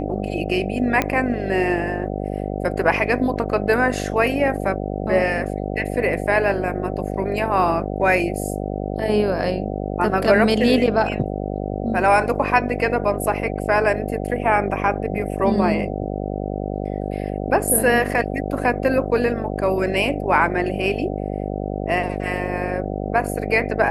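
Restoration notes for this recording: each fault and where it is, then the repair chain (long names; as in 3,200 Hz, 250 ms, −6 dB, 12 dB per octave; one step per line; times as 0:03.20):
mains buzz 50 Hz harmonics 15 −26 dBFS
0:01.02: click −6 dBFS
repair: click removal
hum removal 50 Hz, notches 15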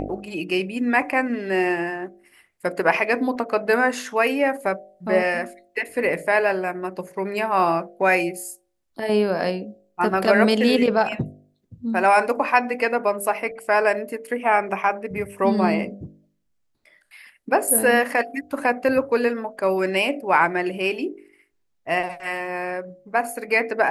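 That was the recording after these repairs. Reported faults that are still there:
none of them is left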